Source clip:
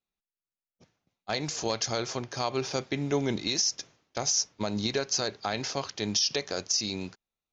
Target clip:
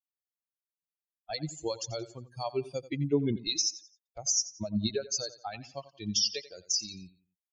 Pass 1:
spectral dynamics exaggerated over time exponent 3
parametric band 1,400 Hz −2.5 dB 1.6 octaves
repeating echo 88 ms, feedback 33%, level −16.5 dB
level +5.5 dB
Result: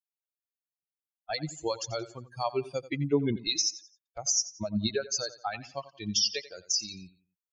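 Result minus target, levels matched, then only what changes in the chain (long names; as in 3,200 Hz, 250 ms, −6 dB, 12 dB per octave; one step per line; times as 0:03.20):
1,000 Hz band +4.0 dB
change: parametric band 1,400 Hz −12 dB 1.6 octaves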